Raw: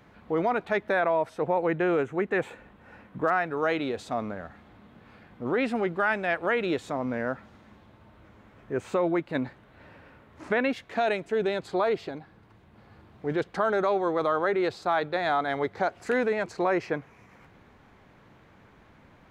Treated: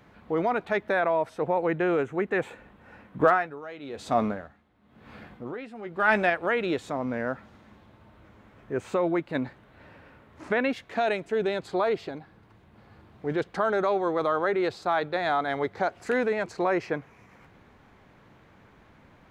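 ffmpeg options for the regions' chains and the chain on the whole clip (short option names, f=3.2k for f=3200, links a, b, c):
-filter_complex "[0:a]asettb=1/sr,asplit=3[a][b][c];[a]atrim=end=3.204[d];[b]atrim=start=3.2:end=6.3,asetpts=PTS-STARTPTS,afade=t=in:d=0.004:c=qsin,afade=t=out:st=3.096:d=0.004:c=qsin,acontrast=62,asplit=2[e][f];[f]adelay=14,volume=-11dB[g];[e][g]amix=inputs=2:normalize=0,atrim=end_sample=136710,aeval=exprs='val(0)*pow(10,-21*(0.5-0.5*cos(2*PI*1*n/s))/20)':c=same[h];[c]atrim=start=6.296[i];[d][h]acrossfade=d=0.004:c1=hsin:c2=qsin[j];[j][i]acrossfade=d=0.004:c1=qsin:c2=hsin"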